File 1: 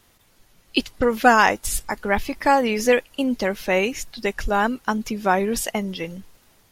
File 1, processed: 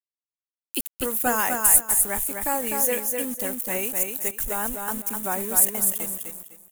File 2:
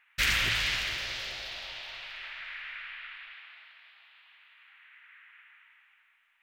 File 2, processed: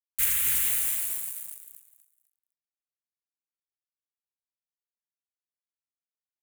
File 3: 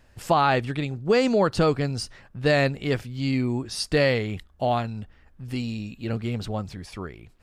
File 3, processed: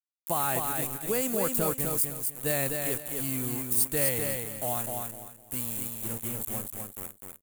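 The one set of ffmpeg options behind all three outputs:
ffmpeg -i in.wav -af "aeval=exprs='val(0)*gte(abs(val(0)),0.0335)':channel_layout=same,aecho=1:1:252|504|756|1008:0.596|0.155|0.0403|0.0105,aexciter=amount=13.5:drive=6.4:freq=7500,volume=-10.5dB" out.wav

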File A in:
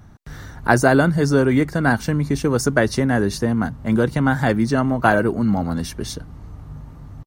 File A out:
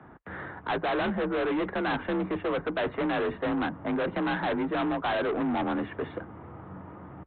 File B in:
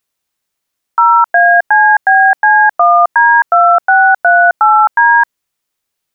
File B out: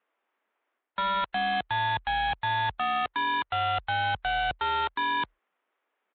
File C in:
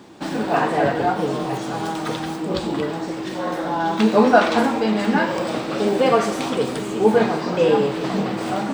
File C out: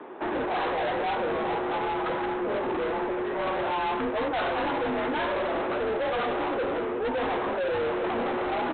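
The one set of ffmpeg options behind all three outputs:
ffmpeg -i in.wav -filter_complex "[0:a]acrossover=split=2700[link_01][link_02];[link_02]acompressor=threshold=-41dB:ratio=4:attack=1:release=60[link_03];[link_01][link_03]amix=inputs=2:normalize=0,acrossover=split=270 2100:gain=0.141 1 0.0631[link_04][link_05][link_06];[link_04][link_05][link_06]amix=inputs=3:normalize=0,areverse,acompressor=threshold=-21dB:ratio=5,areverse,asoftclip=type=hard:threshold=-19.5dB,afreqshift=39,aresample=8000,asoftclip=type=tanh:threshold=-31dB,aresample=44100,volume=5.5dB" -ar 16000 -c:a libvorbis -b:a 64k out.ogg

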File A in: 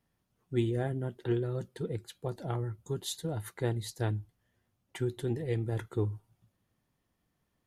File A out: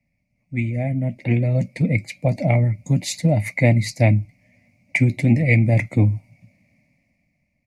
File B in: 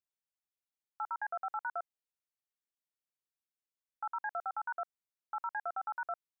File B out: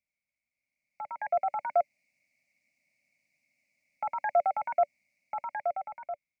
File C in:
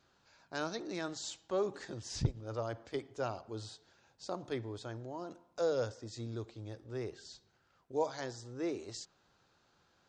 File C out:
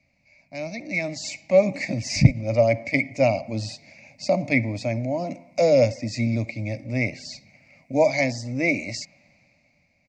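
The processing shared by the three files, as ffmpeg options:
ffmpeg -i in.wav -filter_complex "[0:a]acrossover=split=120[link_01][link_02];[link_02]dynaudnorm=framelen=260:gausssize=9:maxgain=15.5dB[link_03];[link_01][link_03]amix=inputs=2:normalize=0,firequalizer=gain_entry='entry(270,0);entry(400,-27);entry(580,2);entry(850,-14);entry(1500,-28);entry(2200,15);entry(3200,-22);entry(4600,-6);entry(12000,-19)':delay=0.05:min_phase=1,volume=7dB" out.wav

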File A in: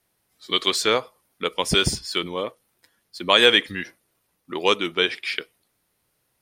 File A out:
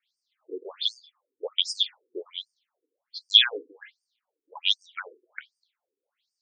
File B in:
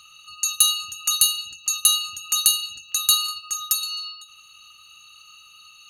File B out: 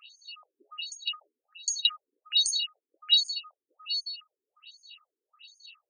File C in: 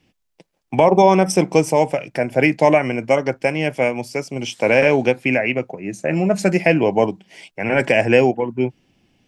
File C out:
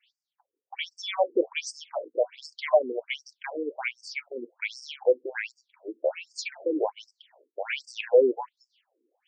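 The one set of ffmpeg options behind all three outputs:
ffmpeg -i in.wav -filter_complex "[0:a]equalizer=frequency=250:width_type=o:width=1:gain=-7,equalizer=frequency=500:width_type=o:width=1:gain=5,equalizer=frequency=4000:width_type=o:width=1:gain=8,equalizer=frequency=8000:width_type=o:width=1:gain=-4,asplit=2[link_01][link_02];[link_02]acontrast=20,volume=-1.5dB[link_03];[link_01][link_03]amix=inputs=2:normalize=0,equalizer=frequency=3300:width_type=o:width=0.33:gain=7,afftfilt=real='re*between(b*sr/1024,330*pow(6600/330,0.5+0.5*sin(2*PI*1.3*pts/sr))/1.41,330*pow(6600/330,0.5+0.5*sin(2*PI*1.3*pts/sr))*1.41)':imag='im*between(b*sr/1024,330*pow(6600/330,0.5+0.5*sin(2*PI*1.3*pts/sr))/1.41,330*pow(6600/330,0.5+0.5*sin(2*PI*1.3*pts/sr))*1.41)':win_size=1024:overlap=0.75,volume=-13dB" out.wav

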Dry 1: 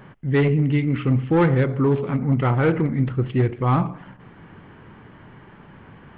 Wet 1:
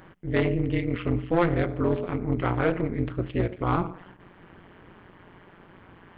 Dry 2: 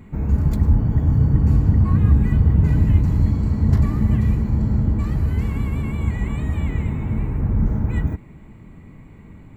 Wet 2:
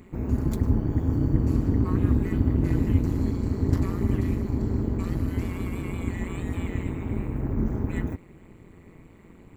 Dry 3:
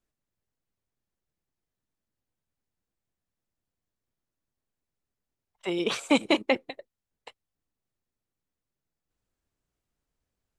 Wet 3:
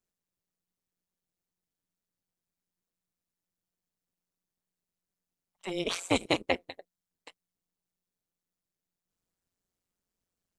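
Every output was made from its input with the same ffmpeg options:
ffmpeg -i in.wav -af "tremolo=f=180:d=0.947,bass=frequency=250:gain=-4,treble=frequency=4000:gain=5" out.wav

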